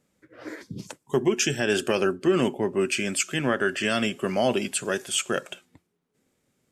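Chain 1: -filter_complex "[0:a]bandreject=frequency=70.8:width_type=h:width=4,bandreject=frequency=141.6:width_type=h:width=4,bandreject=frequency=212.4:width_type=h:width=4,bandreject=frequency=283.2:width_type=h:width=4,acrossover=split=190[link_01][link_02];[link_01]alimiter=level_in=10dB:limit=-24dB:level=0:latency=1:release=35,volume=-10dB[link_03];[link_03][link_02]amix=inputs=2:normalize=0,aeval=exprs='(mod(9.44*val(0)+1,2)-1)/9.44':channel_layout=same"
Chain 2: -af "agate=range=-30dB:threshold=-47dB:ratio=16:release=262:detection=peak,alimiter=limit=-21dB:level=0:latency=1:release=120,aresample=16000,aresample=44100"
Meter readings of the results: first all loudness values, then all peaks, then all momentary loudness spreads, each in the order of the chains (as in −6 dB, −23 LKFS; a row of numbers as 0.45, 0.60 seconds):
−26.0, −32.5 LKFS; −19.5, −20.5 dBFS; 16, 10 LU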